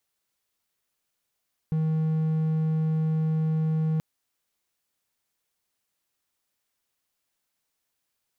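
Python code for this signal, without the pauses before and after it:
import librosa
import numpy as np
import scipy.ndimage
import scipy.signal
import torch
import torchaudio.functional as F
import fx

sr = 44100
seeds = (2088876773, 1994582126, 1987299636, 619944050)

y = 10.0 ** (-20.0 / 20.0) * (1.0 - 4.0 * np.abs(np.mod(158.0 * (np.arange(round(2.28 * sr)) / sr) + 0.25, 1.0) - 0.5))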